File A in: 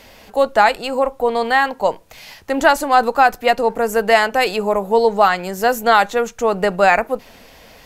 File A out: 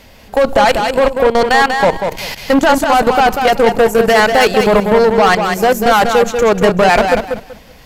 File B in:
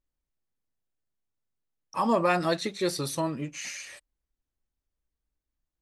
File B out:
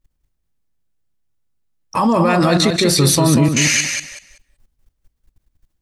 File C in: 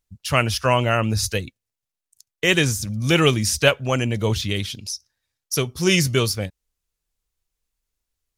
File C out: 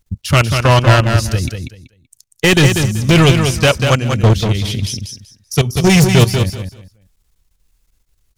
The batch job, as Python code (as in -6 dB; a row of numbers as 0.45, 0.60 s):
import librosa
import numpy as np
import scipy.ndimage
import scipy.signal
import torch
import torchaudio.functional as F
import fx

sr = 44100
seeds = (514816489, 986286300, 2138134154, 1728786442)

p1 = fx.level_steps(x, sr, step_db=20)
p2 = fx.bass_treble(p1, sr, bass_db=7, treble_db=0)
p3 = 10.0 ** (-22.0 / 20.0) * np.tanh(p2 / 10.0 ** (-22.0 / 20.0))
p4 = p3 + fx.echo_feedback(p3, sr, ms=191, feedback_pct=21, wet_db=-6, dry=0)
y = p4 * 10.0 ** (-2 / 20.0) / np.max(np.abs(p4))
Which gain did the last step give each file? +16.0, +24.0, +16.0 dB